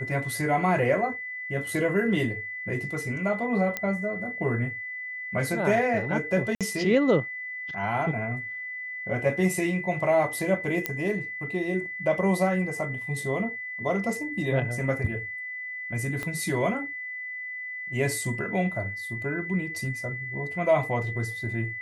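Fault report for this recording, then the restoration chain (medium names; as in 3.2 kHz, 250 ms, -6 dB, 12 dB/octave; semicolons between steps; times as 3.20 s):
whine 2 kHz -33 dBFS
3.77 s: pop -13 dBFS
6.55–6.61 s: dropout 57 ms
10.86 s: pop -10 dBFS
16.23 s: pop -18 dBFS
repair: de-click; band-stop 2 kHz, Q 30; interpolate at 6.55 s, 57 ms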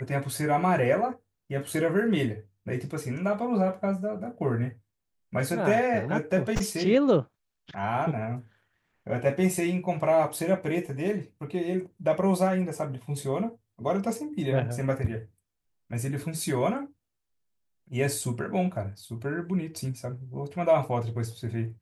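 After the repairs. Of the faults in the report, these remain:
16.23 s: pop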